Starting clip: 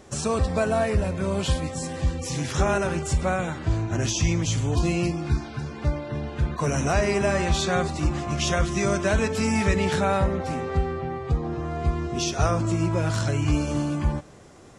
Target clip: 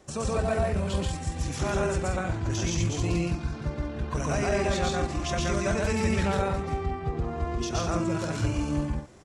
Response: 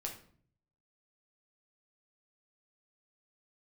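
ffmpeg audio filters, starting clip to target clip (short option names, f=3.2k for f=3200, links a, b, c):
-af "adynamicequalizer=threshold=0.00794:dfrequency=140:dqfactor=6:tfrequency=140:tqfactor=6:attack=5:release=100:ratio=0.375:range=2:mode=cutabove:tftype=bell,aecho=1:1:204.1|285.7:1|0.562,atempo=1.6,volume=-6.5dB"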